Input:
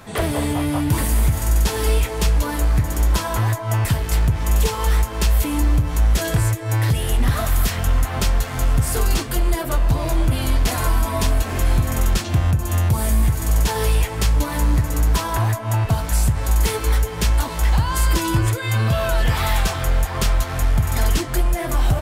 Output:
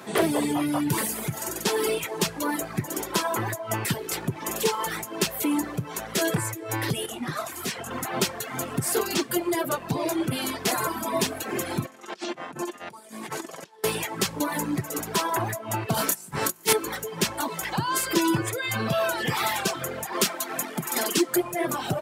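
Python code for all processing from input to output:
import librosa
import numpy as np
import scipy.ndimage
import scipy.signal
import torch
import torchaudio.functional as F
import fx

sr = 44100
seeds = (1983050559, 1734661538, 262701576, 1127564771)

y = fx.chain(x, sr, fx.lowpass(hz=12000.0, slope=12),
    fx.detune_double(cents=46), at=(7.06, 7.91))
y = fx.chain(y, sr, fx.bessel_highpass(hz=330.0, order=2),
    fx.over_compress(threshold_db=-33.0, ratio=-0.5),
    fx.air_absorb(metres=52.0), at=(11.85, 13.84))
y = fx.chain(y, sr, fx.high_shelf(hz=6700.0, db=6.5),
    fx.over_compress(threshold_db=-21.0, ratio=-0.5),
    fx.doubler(ms=28.0, db=-3), at=(15.94, 16.73))
y = fx.chain(y, sr, fx.steep_highpass(hz=160.0, slope=36),
    fx.high_shelf(hz=5200.0, db=5.0), at=(20.12, 21.36))
y = fx.dereverb_blind(y, sr, rt60_s=1.7)
y = scipy.signal.sosfilt(scipy.signal.butter(4, 160.0, 'highpass', fs=sr, output='sos'), y)
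y = fx.peak_eq(y, sr, hz=370.0, db=9.0, octaves=0.25)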